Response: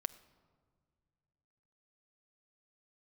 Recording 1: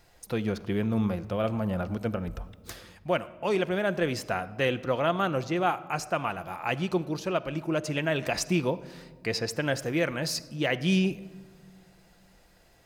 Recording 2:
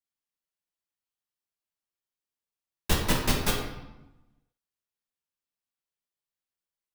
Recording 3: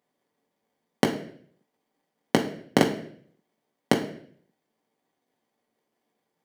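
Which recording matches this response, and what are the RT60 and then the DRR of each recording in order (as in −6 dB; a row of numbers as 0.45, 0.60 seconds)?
1; non-exponential decay, 0.95 s, 0.60 s; 11.5, −2.5, −0.5 decibels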